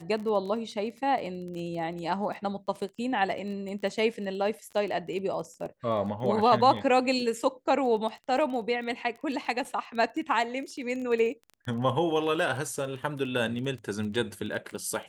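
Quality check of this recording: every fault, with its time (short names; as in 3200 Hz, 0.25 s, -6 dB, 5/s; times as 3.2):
crackle 17/s -35 dBFS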